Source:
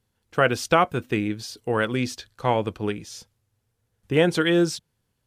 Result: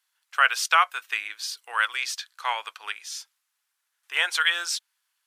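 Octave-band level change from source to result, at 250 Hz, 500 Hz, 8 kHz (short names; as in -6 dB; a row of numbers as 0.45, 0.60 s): under -35 dB, -20.0 dB, +4.5 dB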